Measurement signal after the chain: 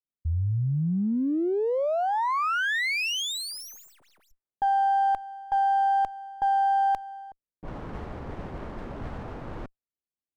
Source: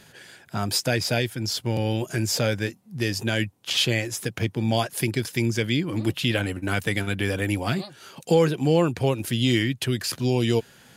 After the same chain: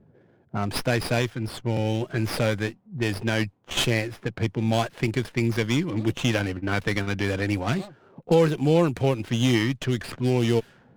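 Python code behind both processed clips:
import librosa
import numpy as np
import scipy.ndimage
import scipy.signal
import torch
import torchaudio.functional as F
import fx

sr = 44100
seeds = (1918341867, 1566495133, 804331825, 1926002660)

y = fx.env_lowpass(x, sr, base_hz=400.0, full_db=-19.0)
y = fx.running_max(y, sr, window=5)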